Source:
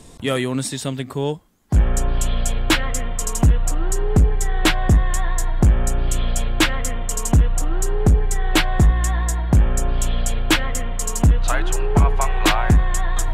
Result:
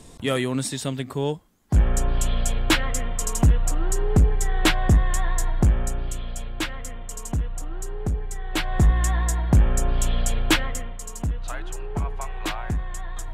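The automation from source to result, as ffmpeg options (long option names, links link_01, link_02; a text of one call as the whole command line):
ffmpeg -i in.wav -af "volume=6.5dB,afade=type=out:start_time=5.47:duration=0.75:silence=0.375837,afade=type=in:start_time=8.51:duration=0.42:silence=0.354813,afade=type=out:start_time=10.48:duration=0.51:silence=0.316228" out.wav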